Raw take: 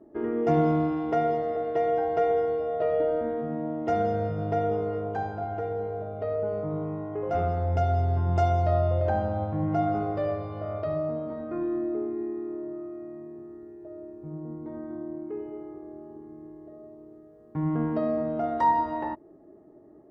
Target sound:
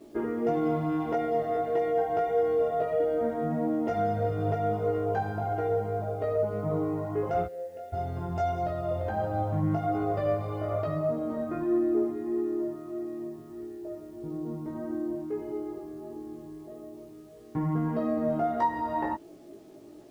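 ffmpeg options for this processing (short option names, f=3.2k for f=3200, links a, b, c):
-filter_complex "[0:a]alimiter=limit=-22.5dB:level=0:latency=1:release=226,asplit=3[a][b][c];[a]afade=t=out:st=7.45:d=0.02[d];[b]asplit=3[e][f][g];[e]bandpass=f=530:t=q:w=8,volume=0dB[h];[f]bandpass=f=1.84k:t=q:w=8,volume=-6dB[i];[g]bandpass=f=2.48k:t=q:w=8,volume=-9dB[j];[h][i][j]amix=inputs=3:normalize=0,afade=t=in:st=7.45:d=0.02,afade=t=out:st=7.92:d=0.02[k];[c]afade=t=in:st=7.92:d=0.02[l];[d][k][l]amix=inputs=3:normalize=0,acrusher=bits=10:mix=0:aa=0.000001,flanger=delay=16.5:depth=2.1:speed=1.6,volume=6dB"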